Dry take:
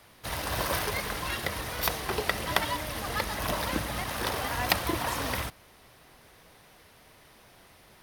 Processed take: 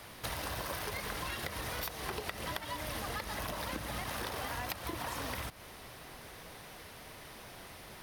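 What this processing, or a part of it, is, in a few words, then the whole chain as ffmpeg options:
serial compression, peaks first: -af "acompressor=threshold=-37dB:ratio=6,acompressor=threshold=-45dB:ratio=2,volume=6dB"

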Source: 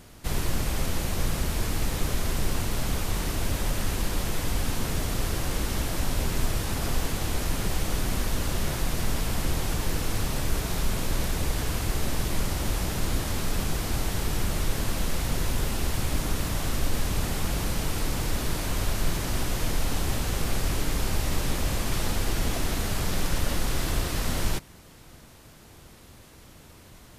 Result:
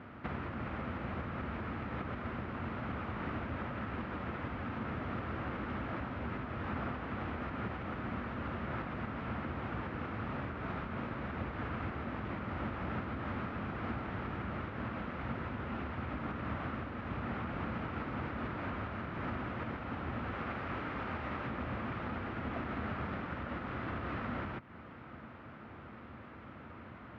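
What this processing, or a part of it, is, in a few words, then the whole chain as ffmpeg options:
bass amplifier: -filter_complex "[0:a]asettb=1/sr,asplit=3[link_01][link_02][link_03];[link_01]atrim=end=20.324[link_04];[link_02]atrim=start=20.32:end=21.47,asetpts=PTS-STARTPTS,afade=type=in:duration=0.004:curve=qsin,afade=type=out:start_time=1.146:duration=0.004:curve=qsin,lowshelf=frequency=380:gain=-5.5[link_05];[link_03]atrim=start=21.466[link_06];[link_04][link_05]acrossfade=duration=0.004:curve1=hsin:curve2=qsin[link_07];[link_07][link_06]acrossfade=duration=0.004:curve1=qsin:curve2=hsin,acompressor=threshold=-33dB:ratio=4,highpass=frequency=76:width=0.5412,highpass=frequency=76:width=1.3066,equalizer=frequency=96:width_type=q:width=4:gain=-3,equalizer=frequency=160:width_type=q:width=4:gain=-5,equalizer=frequency=230:width_type=q:width=4:gain=5,equalizer=frequency=420:width_type=q:width=4:gain=-3,equalizer=frequency=1300:width_type=q:width=4:gain=7,lowpass=frequency=2300:width=0.5412,lowpass=frequency=2300:width=1.3066,volume=2dB"

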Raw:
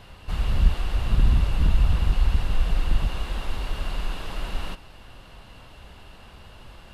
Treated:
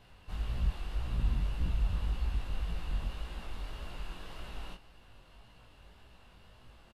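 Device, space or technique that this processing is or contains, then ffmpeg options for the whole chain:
double-tracked vocal: -filter_complex "[0:a]asplit=2[link_01][link_02];[link_02]adelay=17,volume=-13.5dB[link_03];[link_01][link_03]amix=inputs=2:normalize=0,flanger=delay=16.5:depth=6.2:speed=1.8,volume=-9dB"

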